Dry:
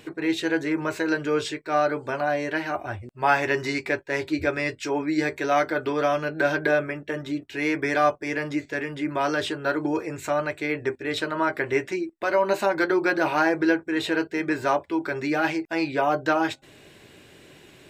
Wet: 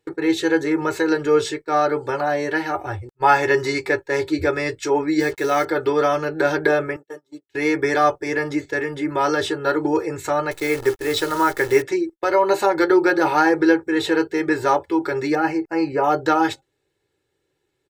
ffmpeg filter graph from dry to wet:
ffmpeg -i in.wav -filter_complex "[0:a]asettb=1/sr,asplit=3[link_01][link_02][link_03];[link_01]atrim=end=5.204[link_04];[link_02]atrim=start=5.2:end=5.65,asetpts=PTS-STARTPTS,afade=type=in:duration=0.004:curve=qsin,afade=type=out:start_time=0.446:duration=0.004:curve=qsin,agate=range=-33dB:threshold=-39dB:ratio=3:release=100:detection=peak,equalizer=frequency=890:width_type=o:width=1.1:gain=-3.5,acrusher=bits=6:mix=0:aa=0.5[link_05];[link_03]atrim=start=5.646[link_06];[link_04][link_05]acrossfade=duration=0.004:curve1=hsin:curve2=qsin[link_07];[link_07][link_06]acrossfade=duration=0.004:curve1=qsin:curve2=hsin,asettb=1/sr,asplit=3[link_08][link_09][link_10];[link_08]atrim=end=6.964[link_11];[link_09]atrim=start=6.96:end=7.49,asetpts=PTS-STARTPTS,afade=type=in:duration=0.004:curve=qsin,afade=type=out:start_time=0.526:duration=0.004:curve=qsin,highpass=frequency=1000:poles=1,equalizer=frequency=2200:width_type=o:width=1.8:gain=-14[link_12];[link_10]atrim=start=7.486[link_13];[link_11][link_12]acrossfade=duration=0.004:curve1=hsin:curve2=qsin[link_14];[link_14][link_13]acrossfade=duration=0.004:curve1=qsin:curve2=hsin,asettb=1/sr,asplit=3[link_15][link_16][link_17];[link_15]atrim=end=10.514[link_18];[link_16]atrim=start=10.51:end=11.82,asetpts=PTS-STARTPTS,afade=type=in:duration=0.004:curve=qsin,afade=type=out:start_time=1.306:duration=0.004:curve=qsin,highshelf=frequency=3600:gain=4.5,acrusher=bits=7:dc=4:mix=0:aa=0.000001[link_19];[link_17]atrim=start=11.816[link_20];[link_18][link_19]acrossfade=duration=0.004:curve1=hsin:curve2=qsin[link_21];[link_21][link_20]acrossfade=duration=0.004:curve1=qsin:curve2=hsin,asettb=1/sr,asplit=3[link_22][link_23][link_24];[link_22]atrim=end=15.354[link_25];[link_23]atrim=start=15.35:end=16.04,asetpts=PTS-STARTPTS,afade=type=in:duration=0.004:curve=qsin,afade=type=out:start_time=0.686:duration=0.004:curve=qsin,asuperstop=centerf=3500:order=20:qfactor=3.8,highshelf=frequency=2100:gain=-9.5[link_26];[link_24]atrim=start=16.036[link_27];[link_25][link_26]acrossfade=duration=0.004:curve1=hsin:curve2=qsin[link_28];[link_28][link_27]acrossfade=duration=0.004:curve1=qsin:curve2=hsin,agate=range=-28dB:threshold=-38dB:ratio=16:detection=peak,equalizer=frequency=2600:width_type=o:width=0.6:gain=-6.5,aecho=1:1:2.3:0.69,volume=4dB" out.wav

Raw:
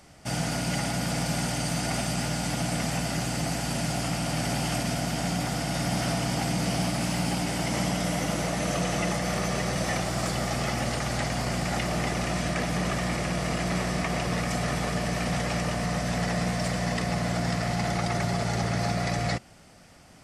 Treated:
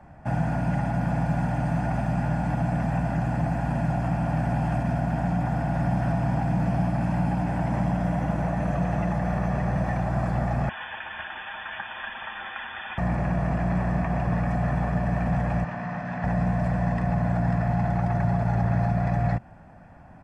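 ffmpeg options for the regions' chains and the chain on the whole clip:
ffmpeg -i in.wav -filter_complex "[0:a]asettb=1/sr,asplit=3[link_01][link_02][link_03];[link_01]atrim=end=10.694[link_04];[link_02]atrim=start=10.69:end=12.98,asetpts=PTS-STARTPTS,afade=type=in:duration=0.004:curve=qsin,afade=type=out:start_time=2.286:duration=0.004:curve=qsin,highpass=frequency=200:width=0.5412,highpass=frequency=200:width=1.3066,aecho=1:1:7.2:0.59,atrim=end_sample=100989,lowpass=frequency=3100:width_type=q:width=0.5098,lowpass=frequency=3100:width_type=q:width=0.6013,lowpass=frequency=3100:width_type=q:width=0.9,lowpass=frequency=3100:width_type=q:width=2.563,afreqshift=-3700[link_05];[link_03]atrim=start=12.976[link_06];[link_04][link_05]acrossfade=duration=0.004:curve1=hsin:curve2=qsin[link_07];[link_07][link_06]acrossfade=duration=0.004:curve1=qsin:curve2=hsin,asettb=1/sr,asplit=3[link_08][link_09][link_10];[link_08]atrim=end=15.644[link_11];[link_09]atrim=start=15.64:end=16.24,asetpts=PTS-STARTPTS,afade=type=in:duration=0.004:curve=qsin,afade=type=out:start_time=0.596:duration=0.004:curve=qsin,highpass=210,lowpass=5400,equalizer=frequency=470:width_type=o:width=2.2:gain=-9[link_12];[link_10]atrim=start=16.236[link_13];[link_11][link_12]acrossfade=duration=0.004:curve1=hsin:curve2=qsin[link_14];[link_14][link_13]acrossfade=duration=0.004:curve1=qsin:curve2=hsin,aecho=1:1:1.2:0.52,acrossover=split=180|3000[link_15][link_16][link_17];[link_16]acompressor=threshold=-31dB:ratio=6[link_18];[link_15][link_18][link_17]amix=inputs=3:normalize=0,firequalizer=gain_entry='entry(1300,0);entry(3600,-24);entry(5400,-28)':delay=0.05:min_phase=1,volume=4dB" out.wav

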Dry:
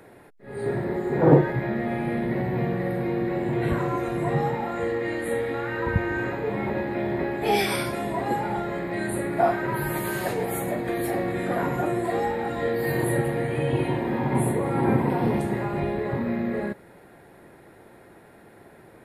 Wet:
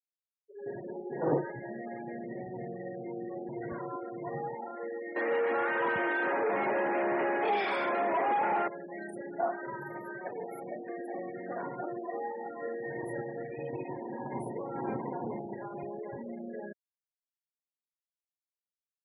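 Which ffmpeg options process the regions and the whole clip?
ffmpeg -i in.wav -filter_complex "[0:a]asettb=1/sr,asplit=3[link_01][link_02][link_03];[link_01]atrim=end=5.164[link_04];[link_02]atrim=start=5.16:end=8.68,asetpts=PTS-STARTPTS,afade=type=in:duration=0.004:curve=qsin,afade=type=out:start_time=3.516:duration=0.004:curve=qsin,highpass=frequency=140:poles=1,asplit=2[link_05][link_06];[link_06]highpass=frequency=720:poles=1,volume=30dB,asoftclip=type=tanh:threshold=-10dB[link_07];[link_05][link_07]amix=inputs=2:normalize=0,lowpass=frequency=1500:poles=1,volume=-6dB,acrusher=bits=8:dc=4:mix=0:aa=0.000001[link_08];[link_03]atrim=start=8.676[link_09];[link_04][link_08]acrossfade=duration=0.004:curve1=hsin:curve2=qsin[link_10];[link_10][link_09]acrossfade=duration=0.004:curve1=qsin:curve2=hsin,highpass=frequency=490:poles=1,afftfilt=real='re*gte(hypot(re,im),0.0501)':imag='im*gte(hypot(re,im),0.0501)':win_size=1024:overlap=0.75,highshelf=frequency=2500:gain=-9,volume=-7.5dB" out.wav

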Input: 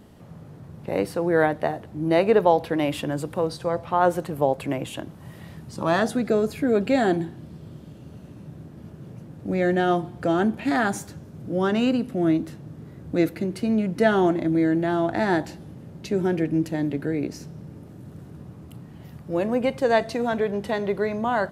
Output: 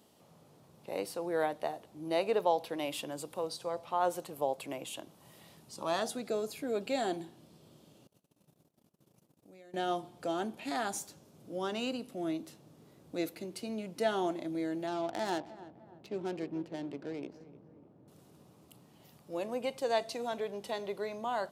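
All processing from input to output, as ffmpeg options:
ffmpeg -i in.wav -filter_complex "[0:a]asettb=1/sr,asplit=3[link_01][link_02][link_03];[link_01]atrim=end=8.074[link_04];[link_02]atrim=start=8.07:end=9.74,asetpts=PTS-STARTPTS,afade=type=in:duration=0.004:curve=qsin,afade=type=out:start_time=1.666:duration=0.004:curve=qsin,highshelf=frequency=8700:gain=10.5,acompressor=threshold=-37dB:ratio=10:attack=3.2:release=140:knee=1:detection=peak,agate=range=-26dB:threshold=-41dB:ratio=16:release=100:detection=peak[link_05];[link_03]atrim=start=9.736[link_06];[link_04][link_05]acrossfade=duration=0.004:curve1=hsin:curve2=qsin[link_07];[link_07][link_06]acrossfade=duration=0.004:curve1=qsin:curve2=hsin,asettb=1/sr,asplit=3[link_08][link_09][link_10];[link_08]atrim=end=14.874[link_11];[link_09]atrim=start=14.87:end=18.08,asetpts=PTS-STARTPTS,afade=type=in:duration=0.004:curve=qsin,afade=type=out:start_time=3.206:duration=0.004:curve=qsin,adynamicsmooth=sensitivity=4.5:basefreq=980,asplit=2[link_12][link_13];[link_13]adelay=302,lowpass=frequency=1500:poles=1,volume=-15.5dB,asplit=2[link_14][link_15];[link_15]adelay=302,lowpass=frequency=1500:poles=1,volume=0.47,asplit=2[link_16][link_17];[link_17]adelay=302,lowpass=frequency=1500:poles=1,volume=0.47,asplit=2[link_18][link_19];[link_19]adelay=302,lowpass=frequency=1500:poles=1,volume=0.47[link_20];[link_12][link_14][link_16][link_18][link_20]amix=inputs=5:normalize=0,atrim=end_sample=141561[link_21];[link_10]atrim=start=18.076[link_22];[link_11][link_21]acrossfade=duration=0.004:curve1=hsin:curve2=qsin[link_23];[link_23][link_22]acrossfade=duration=0.004:curve1=qsin:curve2=hsin,highpass=frequency=1200:poles=1,equalizer=frequency=1700:width=1.4:gain=-11,volume=-2.5dB" out.wav

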